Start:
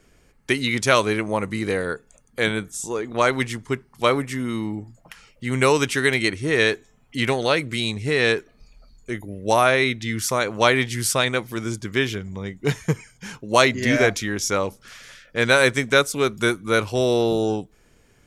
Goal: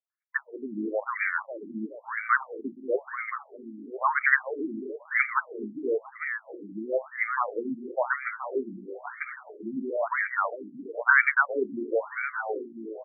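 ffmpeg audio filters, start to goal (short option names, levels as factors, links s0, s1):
-filter_complex "[0:a]aemphasis=mode=production:type=75fm,agate=range=0.0112:threshold=0.00355:ratio=16:detection=peak,tiltshelf=f=800:g=-3.5,atempo=1.4,bandreject=f=60:t=h:w=6,bandreject=f=120:t=h:w=6,bandreject=f=180:t=h:w=6,bandreject=f=240:t=h:w=6,bandreject=f=300:t=h:w=6,bandreject=f=360:t=h:w=6,bandreject=f=420:t=h:w=6,asplit=2[s0][s1];[s1]aecho=0:1:422|844|1266|1688|2110|2532|2954:0.282|0.169|0.101|0.0609|0.0365|0.0219|0.0131[s2];[s0][s2]amix=inputs=2:normalize=0,afftfilt=real='re*between(b*sr/1024,240*pow(1700/240,0.5+0.5*sin(2*PI*1*pts/sr))/1.41,240*pow(1700/240,0.5+0.5*sin(2*PI*1*pts/sr))*1.41)':imag='im*between(b*sr/1024,240*pow(1700/240,0.5+0.5*sin(2*PI*1*pts/sr))/1.41,240*pow(1700/240,0.5+0.5*sin(2*PI*1*pts/sr))*1.41)':win_size=1024:overlap=0.75"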